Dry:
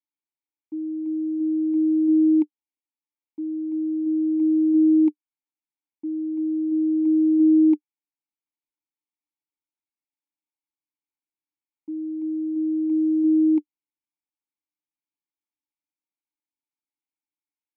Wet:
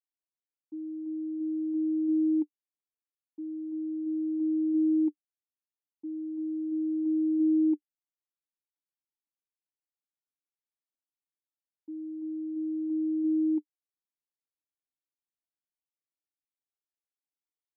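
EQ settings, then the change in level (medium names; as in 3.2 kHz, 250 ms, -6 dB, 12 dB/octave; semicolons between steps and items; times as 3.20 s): band-pass filter 420 Hz, Q 0.79; -7.5 dB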